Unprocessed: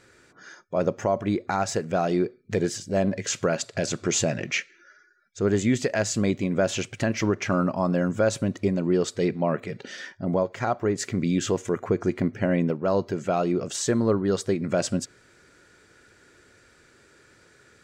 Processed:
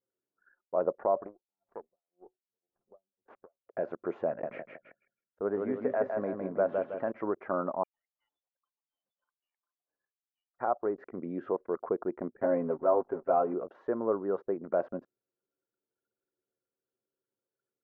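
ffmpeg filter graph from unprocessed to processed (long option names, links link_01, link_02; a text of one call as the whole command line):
ffmpeg -i in.wav -filter_complex "[0:a]asettb=1/sr,asplit=3[link_01][link_02][link_03];[link_01]atrim=end=1.264[link_04];[link_02]atrim=start=1.26:end=3.67,asetpts=PTS-STARTPTS,afade=type=in:duration=0.004:curve=qsin,afade=type=out:start_time=2.406:duration=0.004:curve=qsin,acompressor=threshold=-25dB:ratio=4:attack=3.2:release=140:knee=1:detection=peak,aeval=exprs='max(val(0),0)':channel_layout=same,aeval=exprs='val(0)*pow(10,-31*(0.5-0.5*cos(2*PI*1.9*n/s))/20)':channel_layout=same[link_05];[link_03]atrim=start=3.666[link_06];[link_04][link_05]acrossfade=duration=0.004:curve1=hsin:curve2=qsin[link_07];[link_07][link_06]acrossfade=duration=0.004:curve1=qsin:curve2=hsin,asettb=1/sr,asplit=3[link_08][link_09][link_10];[link_08]atrim=end=4.274[link_11];[link_09]atrim=start=4.27:end=7.1,asetpts=PTS-STARTPTS,afade=type=in:duration=0.004:curve=qsin,afade=type=out:start_time=2.826:duration=0.004:curve=qsin,equalizer=frequency=360:width=7.1:gain=-6.5,aecho=1:1:160|320|480|640|800:0.631|0.265|0.111|0.0467|0.0196,atrim=end_sample=124803[link_12];[link_10]atrim=start=7.096[link_13];[link_11][link_12]acrossfade=duration=0.004:curve1=hsin:curve2=qsin[link_14];[link_14][link_13]acrossfade=duration=0.004:curve1=qsin:curve2=hsin,asettb=1/sr,asplit=3[link_15][link_16][link_17];[link_15]atrim=end=7.834[link_18];[link_16]atrim=start=7.83:end=10.59,asetpts=PTS-STARTPTS,afade=type=in:duration=0.004:curve=qsin,afade=type=out:start_time=2.756:duration=0.004:curve=qsin,aderivative,aeval=exprs='(tanh(89.1*val(0)+0.75)-tanh(0.75))/89.1':channel_layout=same,lowpass=frequency=3000:width_type=q:width=0.5098,lowpass=frequency=3000:width_type=q:width=0.6013,lowpass=frequency=3000:width_type=q:width=0.9,lowpass=frequency=3000:width_type=q:width=2.563,afreqshift=-3500[link_19];[link_17]atrim=start=10.586[link_20];[link_18][link_19]acrossfade=duration=0.004:curve1=hsin:curve2=qsin[link_21];[link_21][link_20]acrossfade=duration=0.004:curve1=qsin:curve2=hsin,asettb=1/sr,asplit=3[link_22][link_23][link_24];[link_22]atrim=end=12.414[link_25];[link_23]atrim=start=12.41:end=13.54,asetpts=PTS-STARTPTS,afade=type=in:duration=0.004:curve=qsin,afade=type=out:start_time=1.126:duration=0.004:curve=qsin,aeval=exprs='val(0)+0.0158*(sin(2*PI*50*n/s)+sin(2*PI*2*50*n/s)/2+sin(2*PI*3*50*n/s)/3+sin(2*PI*4*50*n/s)/4+sin(2*PI*5*50*n/s)/5)':channel_layout=same,aecho=1:1:7.5:0.8,atrim=end_sample=49833,aeval=exprs='val(0)*gte(abs(val(0)),0.0158)':channel_layout=same[link_26];[link_24]atrim=start=13.536[link_27];[link_25][link_26]acrossfade=duration=0.004:curve1=hsin:curve2=qsin[link_28];[link_28][link_27]acrossfade=duration=0.004:curve1=qsin:curve2=hsin,highpass=450,anlmdn=1,lowpass=frequency=1200:width=0.5412,lowpass=frequency=1200:width=1.3066,volume=-2dB" out.wav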